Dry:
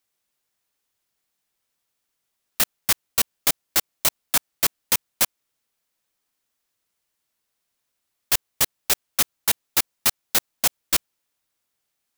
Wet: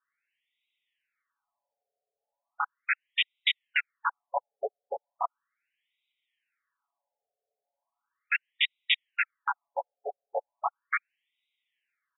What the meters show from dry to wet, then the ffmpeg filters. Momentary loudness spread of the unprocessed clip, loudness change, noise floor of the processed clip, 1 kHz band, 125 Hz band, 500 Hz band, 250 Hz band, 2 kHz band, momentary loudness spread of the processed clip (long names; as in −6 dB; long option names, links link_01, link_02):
3 LU, −9.0 dB, below −85 dBFS, +1.0 dB, below −40 dB, −0.5 dB, below −30 dB, +1.0 dB, 12 LU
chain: -af "aecho=1:1:7.1:0.92,afftfilt=real='re*between(b*sr/1024,550*pow(2800/550,0.5+0.5*sin(2*PI*0.37*pts/sr))/1.41,550*pow(2800/550,0.5+0.5*sin(2*PI*0.37*pts/sr))*1.41)':imag='im*between(b*sr/1024,550*pow(2800/550,0.5+0.5*sin(2*PI*0.37*pts/sr))/1.41,550*pow(2800/550,0.5+0.5*sin(2*PI*0.37*pts/sr))*1.41)':win_size=1024:overlap=0.75,volume=3dB"